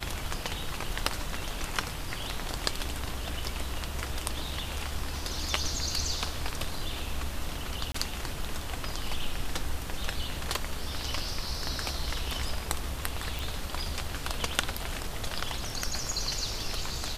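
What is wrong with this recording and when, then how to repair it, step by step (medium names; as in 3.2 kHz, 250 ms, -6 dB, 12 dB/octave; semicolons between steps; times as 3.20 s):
7.92–7.94 s: dropout 24 ms
13.39 s: pop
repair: de-click; interpolate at 7.92 s, 24 ms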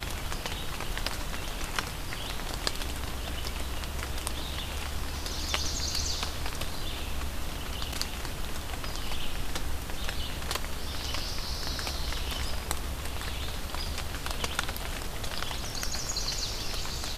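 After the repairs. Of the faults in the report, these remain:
nothing left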